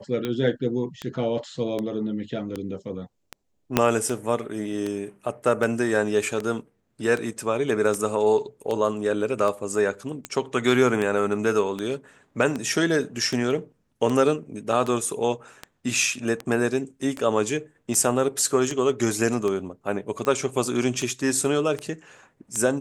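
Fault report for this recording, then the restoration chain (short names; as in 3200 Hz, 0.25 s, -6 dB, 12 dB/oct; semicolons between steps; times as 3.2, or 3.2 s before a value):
tick 78 rpm -15 dBFS
3.77 pop -3 dBFS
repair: de-click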